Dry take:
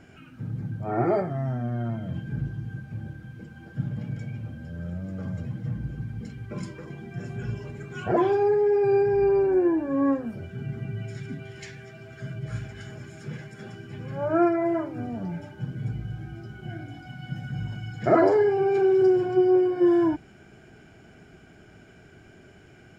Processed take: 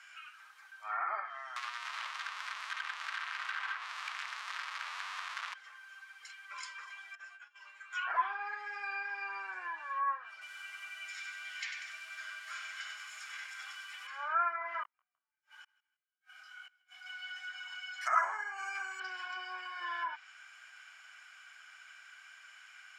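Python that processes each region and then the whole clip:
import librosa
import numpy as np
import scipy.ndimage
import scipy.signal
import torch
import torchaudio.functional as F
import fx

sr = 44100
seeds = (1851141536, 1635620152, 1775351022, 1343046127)

y = fx.chain(x, sr, fx.clip_1bit(),
    fx.high_shelf(hz=2500.0, db=-5.5), at=(1.56, 5.54))
y = fx.chain(y, sr, fx.high_shelf(hz=4100.0, db=-11.0),
    fx.over_compress(threshold_db=-35.0, ratio=-0.5),
    fx.comb_fb(f0_hz=120.0, decay_s=0.16, harmonics='all', damping=0.0, mix_pct=80), at=(7.15, 7.93))
y = fx.chain(y, sr, fx.low_shelf(hz=77.0, db=6.5),
    fx.notch(hz=1700.0, q=14.0),
    fx.echo_crushed(ms=95, feedback_pct=55, bits=9, wet_db=-5), at=(10.32, 14.07))
y = fx.chain(y, sr, fx.gate_flip(shuts_db=-28.0, range_db=-41),
    fx.echo_feedback(ms=159, feedback_pct=37, wet_db=-23.0),
    fx.detune_double(cents=39), at=(14.83, 17.06))
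y = fx.chain(y, sr, fx.peak_eq(hz=440.0, db=-4.5, octaves=1.2),
    fx.resample_bad(factor=6, down='filtered', up='hold'), at=(18.01, 19.0))
y = scipy.signal.sosfilt(scipy.signal.cheby1(4, 1.0, 1100.0, 'highpass', fs=sr, output='sos'), y)
y = fx.env_lowpass_down(y, sr, base_hz=1600.0, full_db=-35.0)
y = y * librosa.db_to_amplitude(4.5)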